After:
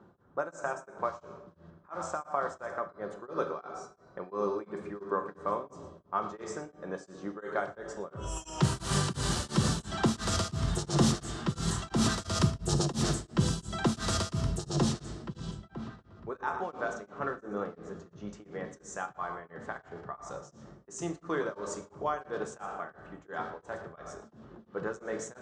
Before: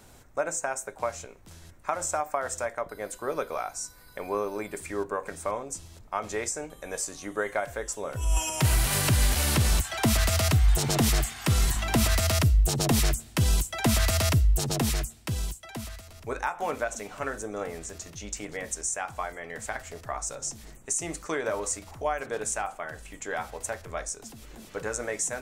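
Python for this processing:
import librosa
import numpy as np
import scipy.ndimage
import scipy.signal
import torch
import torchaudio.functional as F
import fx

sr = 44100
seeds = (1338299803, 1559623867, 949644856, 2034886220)

p1 = fx.peak_eq(x, sr, hz=2100.0, db=-8.0, octaves=0.28)
p2 = p1 + fx.echo_single(p1, sr, ms=117, db=-13.0, dry=0)
p3 = fx.env_lowpass(p2, sr, base_hz=1400.0, full_db=-19.5)
p4 = fx.cabinet(p3, sr, low_hz=100.0, low_slope=12, high_hz=8200.0, hz=(190.0, 380.0, 660.0, 1200.0, 2500.0), db=(7, 6, -3, 5, -8))
p5 = fx.room_shoebox(p4, sr, seeds[0], volume_m3=760.0, walls='mixed', distance_m=0.82)
p6 = p5 * np.abs(np.cos(np.pi * 2.9 * np.arange(len(p5)) / sr))
y = p6 * librosa.db_to_amplitude(-2.5)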